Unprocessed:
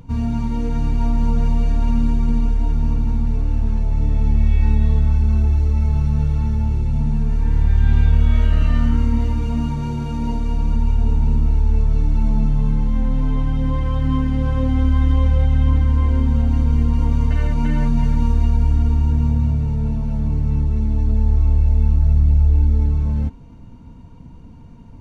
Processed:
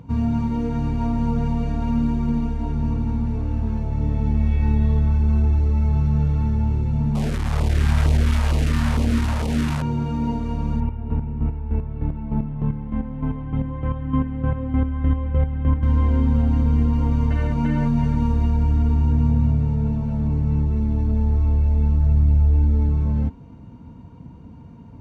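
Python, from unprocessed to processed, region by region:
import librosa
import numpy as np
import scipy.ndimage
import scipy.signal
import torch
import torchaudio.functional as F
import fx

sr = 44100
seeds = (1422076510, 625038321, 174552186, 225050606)

y = fx.chain(x, sr, fx.delta_mod(bps=64000, step_db=-18.5),
    fx.filter_lfo_notch(shape='saw_down', hz=2.2, low_hz=240.0, high_hz=1800.0, q=0.86), at=(7.15, 9.82))
y = fx.chain(y, sr, fx.lowpass(hz=2800.0, slope=24),
    fx.chopper(hz=3.3, depth_pct=60, duty_pct=30), at=(10.8, 15.83))
y = scipy.signal.sosfilt(scipy.signal.butter(2, 73.0, 'highpass', fs=sr, output='sos'), y)
y = fx.high_shelf(y, sr, hz=2800.0, db=-9.5)
y = F.gain(torch.from_numpy(y), 1.5).numpy()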